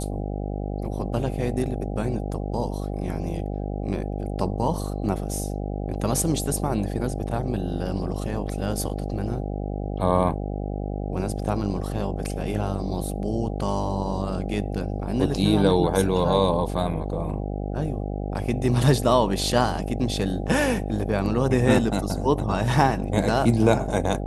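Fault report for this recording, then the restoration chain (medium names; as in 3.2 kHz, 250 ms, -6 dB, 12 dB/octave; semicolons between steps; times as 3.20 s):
buzz 50 Hz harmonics 16 -29 dBFS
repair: de-hum 50 Hz, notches 16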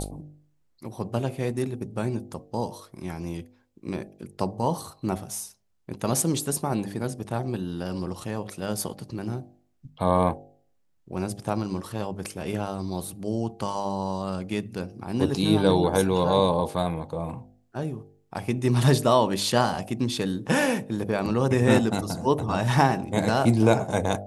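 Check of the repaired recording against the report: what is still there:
nothing left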